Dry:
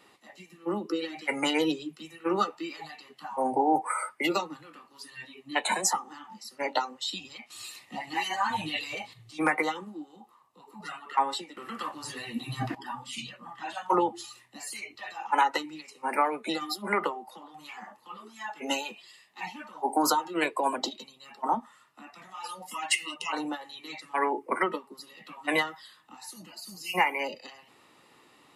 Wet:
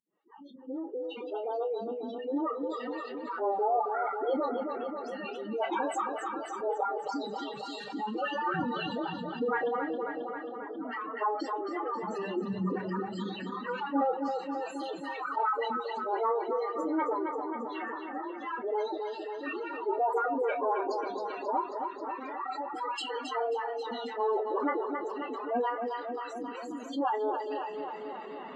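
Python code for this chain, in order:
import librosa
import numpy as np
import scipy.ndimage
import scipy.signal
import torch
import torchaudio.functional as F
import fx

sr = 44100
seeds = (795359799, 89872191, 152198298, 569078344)

y = fx.fade_in_head(x, sr, length_s=4.01)
y = fx.noise_reduce_blind(y, sr, reduce_db=25)
y = fx.dispersion(y, sr, late='highs', ms=75.0, hz=480.0)
y = fx.dynamic_eq(y, sr, hz=2000.0, q=0.79, threshold_db=-42.0, ratio=4.0, max_db=-5)
y = fx.spec_gate(y, sr, threshold_db=-15, keep='strong')
y = fx.pitch_keep_formants(y, sr, semitones=7.5)
y = fx.spacing_loss(y, sr, db_at_10k=36)
y = fx.doubler(y, sr, ms=28.0, db=-12.5)
y = fx.echo_feedback(y, sr, ms=269, feedback_pct=55, wet_db=-10)
y = fx.env_flatten(y, sr, amount_pct=50)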